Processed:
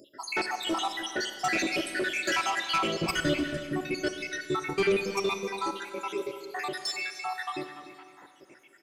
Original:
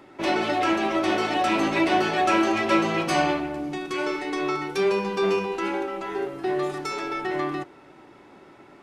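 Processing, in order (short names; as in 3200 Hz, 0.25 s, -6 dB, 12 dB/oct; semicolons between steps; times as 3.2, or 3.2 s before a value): random spectral dropouts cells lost 79%; tilt +3 dB/oct; soft clip -24.5 dBFS, distortion -13 dB; 2.98–4.98 tone controls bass +15 dB, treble -2 dB; outdoor echo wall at 51 m, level -14 dB; Schroeder reverb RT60 2.1 s, combs from 31 ms, DRR 8.5 dB; gain +2.5 dB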